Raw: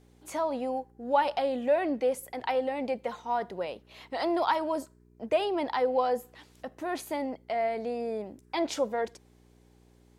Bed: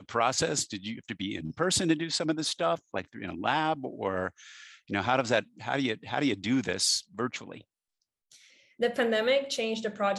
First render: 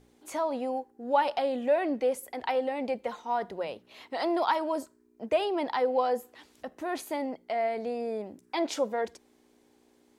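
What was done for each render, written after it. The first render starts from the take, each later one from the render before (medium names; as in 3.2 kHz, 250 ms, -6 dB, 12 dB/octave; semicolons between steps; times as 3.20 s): de-hum 60 Hz, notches 3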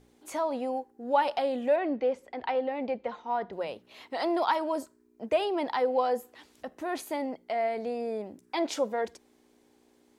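1.76–3.53 s: distance through air 170 m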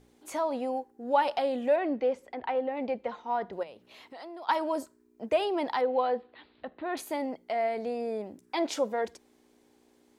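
2.35–2.77 s: distance through air 230 m; 3.63–4.49 s: compression 2.5:1, threshold -48 dBFS; 5.81–6.97 s: elliptic low-pass 4.1 kHz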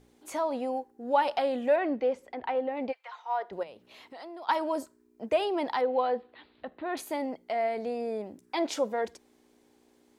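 1.31–1.95 s: dynamic bell 1.5 kHz, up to +4 dB, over -41 dBFS, Q 1.1; 2.91–3.50 s: high-pass 1.4 kHz -> 390 Hz 24 dB/octave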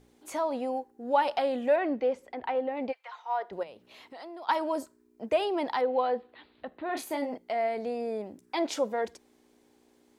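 6.86–7.38 s: doubling 32 ms -6 dB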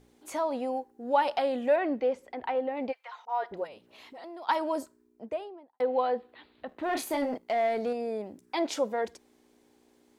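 3.25–4.24 s: phase dispersion highs, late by 42 ms, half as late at 940 Hz; 4.80–5.80 s: studio fade out; 6.69–7.93 s: waveshaping leveller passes 1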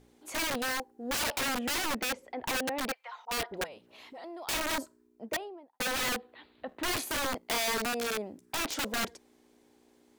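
integer overflow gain 26.5 dB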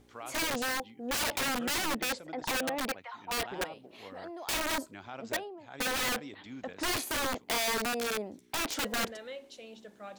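add bed -18 dB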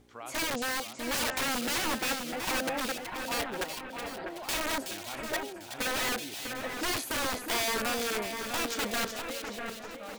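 two-band feedback delay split 2.5 kHz, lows 649 ms, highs 373 ms, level -6 dB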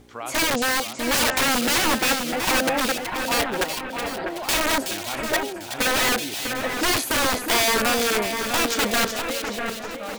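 trim +10 dB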